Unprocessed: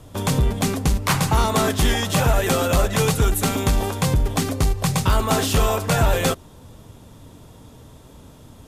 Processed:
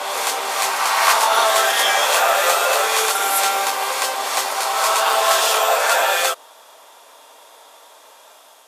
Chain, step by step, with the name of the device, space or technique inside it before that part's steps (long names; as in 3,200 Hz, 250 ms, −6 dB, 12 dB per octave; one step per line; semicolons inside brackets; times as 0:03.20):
ghost voice (reversed playback; convolution reverb RT60 3.0 s, pre-delay 14 ms, DRR −3.5 dB; reversed playback; high-pass filter 630 Hz 24 dB per octave)
level +3.5 dB